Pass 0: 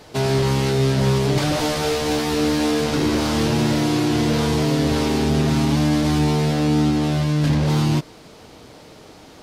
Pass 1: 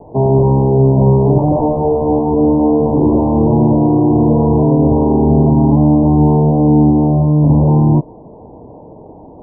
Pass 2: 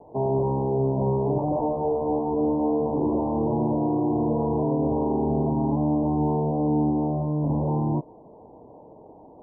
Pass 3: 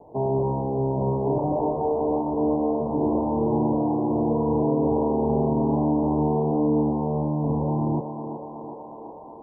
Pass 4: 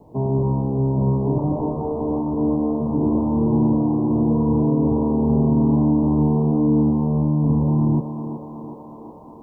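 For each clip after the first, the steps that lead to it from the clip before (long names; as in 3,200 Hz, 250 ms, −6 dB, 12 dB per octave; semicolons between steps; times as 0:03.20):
Butterworth low-pass 1,000 Hz 96 dB per octave; level +8.5 dB
low-shelf EQ 230 Hz −10 dB; level −8.5 dB
feedback echo with a high-pass in the loop 372 ms, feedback 84%, high-pass 310 Hz, level −6 dB
drawn EQ curve 230 Hz 0 dB, 430 Hz −9 dB, 800 Hz −13 dB, 1,700 Hz +6 dB; level +7.5 dB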